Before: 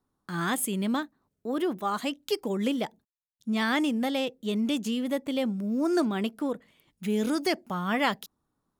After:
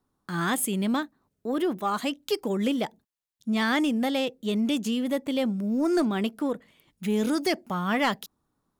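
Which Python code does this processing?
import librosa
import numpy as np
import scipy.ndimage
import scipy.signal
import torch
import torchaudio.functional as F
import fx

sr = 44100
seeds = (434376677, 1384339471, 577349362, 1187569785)

y = 10.0 ** (-17.0 / 20.0) * np.tanh(x / 10.0 ** (-17.0 / 20.0))
y = y * librosa.db_to_amplitude(2.5)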